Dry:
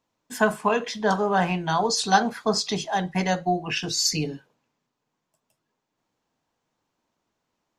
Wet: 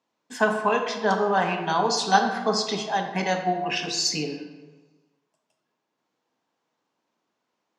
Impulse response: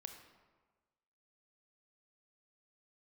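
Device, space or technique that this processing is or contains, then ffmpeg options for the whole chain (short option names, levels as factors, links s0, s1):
supermarket ceiling speaker: -filter_complex "[0:a]highpass=210,lowpass=6600[s0];[1:a]atrim=start_sample=2205[s1];[s0][s1]afir=irnorm=-1:irlink=0,volume=1.88"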